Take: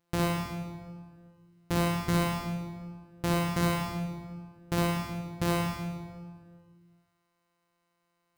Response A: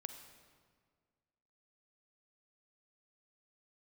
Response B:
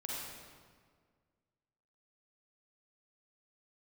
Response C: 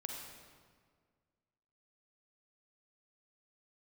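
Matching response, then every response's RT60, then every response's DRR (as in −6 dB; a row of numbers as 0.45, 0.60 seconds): C; 1.8, 1.8, 1.8 seconds; 7.0, −5.0, 0.5 decibels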